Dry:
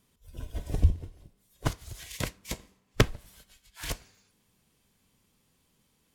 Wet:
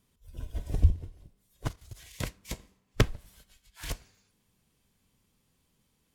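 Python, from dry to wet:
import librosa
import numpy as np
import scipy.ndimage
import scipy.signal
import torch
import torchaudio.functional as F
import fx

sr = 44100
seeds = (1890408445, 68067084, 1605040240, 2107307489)

y = fx.low_shelf(x, sr, hz=130.0, db=5.0)
y = fx.level_steps(y, sr, step_db=12, at=(1.66, 2.18))
y = y * 10.0 ** (-3.5 / 20.0)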